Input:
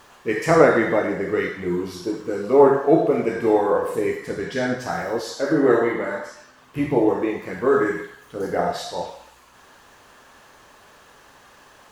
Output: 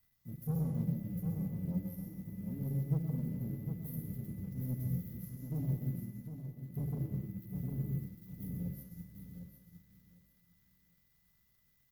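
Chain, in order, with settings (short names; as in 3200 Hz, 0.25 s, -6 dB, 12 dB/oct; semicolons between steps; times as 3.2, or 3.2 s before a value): inverse Chebyshev band-stop 610–3500 Hz, stop band 80 dB; resonant low shelf 140 Hz -9.5 dB, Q 1.5; sample leveller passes 1; whine 2000 Hz -73 dBFS; fixed phaser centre 2400 Hz, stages 6; sample leveller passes 2; feedback echo 0.754 s, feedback 30%, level -6 dB; on a send at -5 dB: reverb RT60 0.70 s, pre-delay 0.12 s; on the sum: upward expander 1.5:1, over -55 dBFS; gain +2 dB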